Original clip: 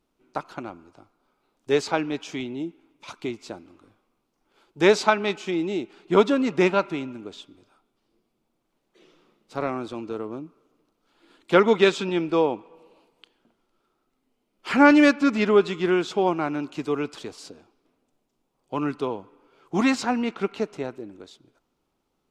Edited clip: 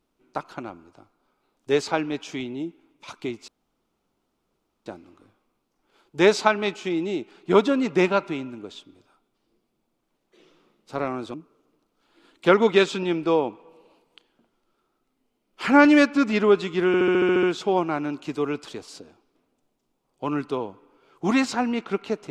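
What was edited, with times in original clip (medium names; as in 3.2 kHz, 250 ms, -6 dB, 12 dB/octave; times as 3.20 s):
3.48 s: insert room tone 1.38 s
9.96–10.40 s: delete
15.93 s: stutter 0.07 s, 9 plays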